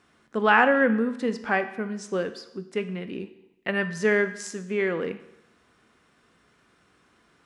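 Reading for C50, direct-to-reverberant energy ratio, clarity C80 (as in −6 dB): 13.0 dB, 10.0 dB, 15.0 dB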